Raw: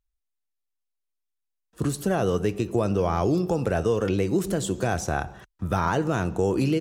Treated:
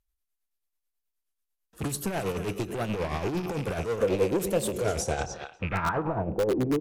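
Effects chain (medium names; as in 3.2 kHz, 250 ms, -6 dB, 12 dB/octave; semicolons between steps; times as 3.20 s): rattle on loud lows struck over -27 dBFS, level -27 dBFS; on a send: thinning echo 275 ms, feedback 31%, high-pass 1.2 kHz, level -12 dB; on the sum: saturation -26.5 dBFS, distortion -7 dB; tremolo 9.2 Hz, depth 55%; low-pass sweep 13 kHz -> 450 Hz, 4.93–6.42 s; in parallel at -10 dB: integer overflow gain 21 dB; 4.02–5.64 s: on the sum: peaking EQ 500 Hz +12 dB 0.54 oct; warped record 33 1/3 rpm, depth 160 cents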